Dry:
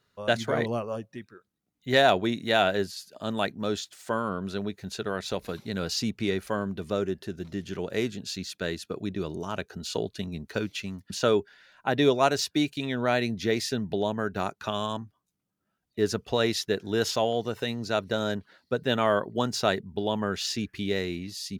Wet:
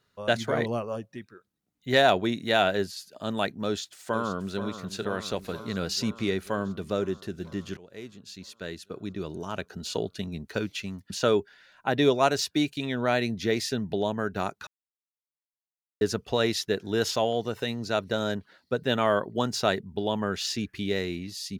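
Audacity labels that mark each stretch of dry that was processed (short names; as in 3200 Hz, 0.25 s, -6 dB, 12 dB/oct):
3.650000	4.610000	echo throw 0.48 s, feedback 75%, level -11 dB
7.770000	9.790000	fade in, from -19.5 dB
14.670000	16.010000	mute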